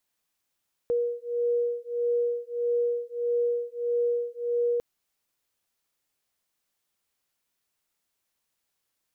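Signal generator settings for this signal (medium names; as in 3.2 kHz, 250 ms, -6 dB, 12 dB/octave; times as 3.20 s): beating tones 477 Hz, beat 1.6 Hz, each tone -27.5 dBFS 3.90 s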